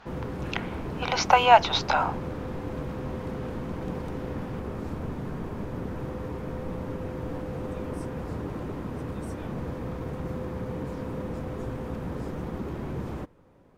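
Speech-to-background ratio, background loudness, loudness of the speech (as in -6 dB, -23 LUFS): 12.0 dB, -35.0 LUFS, -23.0 LUFS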